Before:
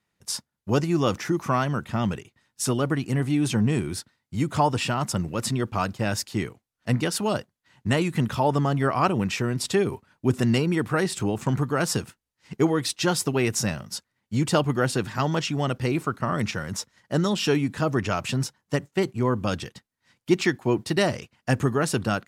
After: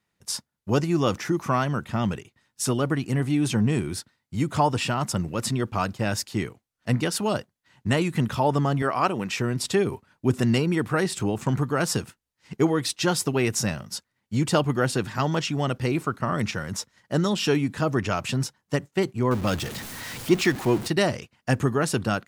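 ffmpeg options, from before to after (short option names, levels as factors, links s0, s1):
-filter_complex "[0:a]asettb=1/sr,asplit=3[s0][s1][s2];[s0]atrim=end=8.824[s3];[s1]atrim=start=8.82:end=9.37,asetpts=PTS-STARTPTS,afade=t=in:d=0.004:c=qsin,afade=t=out:st=0.546:d=0.004:c=qsin,highpass=f=300:p=1[s4];[s2]atrim=start=9.366[s5];[s3][s4]acrossfade=d=0.004:c1=hsin:c2=qsin[s6];[s6][s5]acrossfade=d=0.004:c1=qsin:c2=hsin,asettb=1/sr,asplit=3[s7][s8][s9];[s7]atrim=end=19.314[s10];[s8]atrim=start=19.31:end=20.88,asetpts=PTS-STARTPTS,afade=t=in:d=0.004:c=qsin,afade=t=out:st=1.566:d=0.004:c=qsin,aeval=exprs='val(0)+0.5*0.0316*sgn(val(0))':c=same[s11];[s9]atrim=start=20.876[s12];[s10][s11]acrossfade=d=0.004:c1=hsin:c2=qsin[s13];[s13][s12]acrossfade=d=0.004:c1=qsin:c2=hsin"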